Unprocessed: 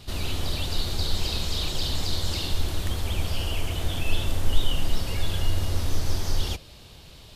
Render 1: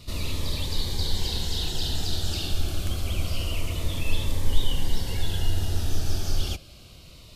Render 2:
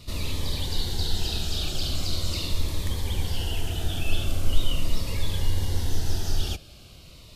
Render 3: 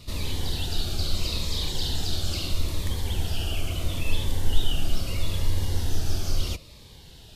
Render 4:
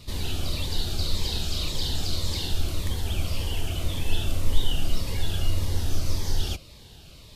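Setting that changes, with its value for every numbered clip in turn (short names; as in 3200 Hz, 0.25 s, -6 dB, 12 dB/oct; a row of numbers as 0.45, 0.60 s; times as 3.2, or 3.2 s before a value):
cascading phaser, rate: 0.27, 0.41, 0.76, 1.8 Hz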